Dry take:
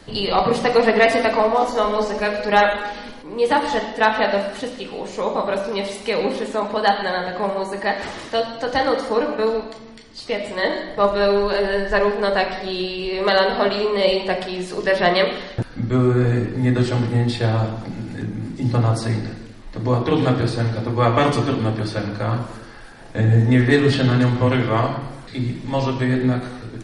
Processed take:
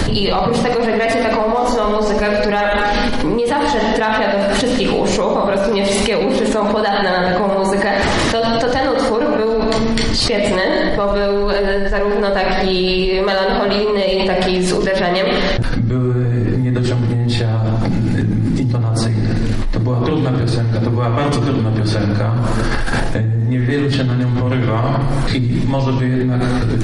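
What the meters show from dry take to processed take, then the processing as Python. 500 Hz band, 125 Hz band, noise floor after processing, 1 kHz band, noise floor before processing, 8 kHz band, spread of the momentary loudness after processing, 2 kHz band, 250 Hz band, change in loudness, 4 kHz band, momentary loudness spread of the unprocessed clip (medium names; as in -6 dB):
+3.5 dB, +5.0 dB, -17 dBFS, +2.5 dB, -38 dBFS, no reading, 2 LU, +3.0 dB, +5.5 dB, +4.0 dB, +5.5 dB, 12 LU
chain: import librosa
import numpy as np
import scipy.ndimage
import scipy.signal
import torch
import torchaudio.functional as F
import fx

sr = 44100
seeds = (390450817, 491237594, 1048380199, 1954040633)

p1 = fx.low_shelf(x, sr, hz=170.0, db=9.5)
p2 = np.clip(10.0 ** (14.5 / 20.0) * p1, -1.0, 1.0) / 10.0 ** (14.5 / 20.0)
p3 = p1 + (p2 * 10.0 ** (-10.5 / 20.0))
p4 = fx.env_flatten(p3, sr, amount_pct=100)
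y = p4 * 10.0 ** (-10.5 / 20.0)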